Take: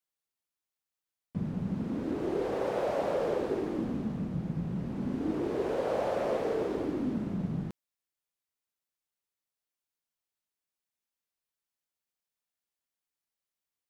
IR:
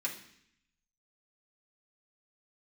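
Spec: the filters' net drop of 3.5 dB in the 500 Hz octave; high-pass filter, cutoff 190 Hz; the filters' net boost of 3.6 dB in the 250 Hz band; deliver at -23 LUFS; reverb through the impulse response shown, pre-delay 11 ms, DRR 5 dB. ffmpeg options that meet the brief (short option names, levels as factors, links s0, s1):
-filter_complex "[0:a]highpass=190,equalizer=f=250:t=o:g=8.5,equalizer=f=500:t=o:g=-7,asplit=2[s0][s1];[1:a]atrim=start_sample=2205,adelay=11[s2];[s1][s2]afir=irnorm=-1:irlink=0,volume=0.398[s3];[s0][s3]amix=inputs=2:normalize=0,volume=2.51"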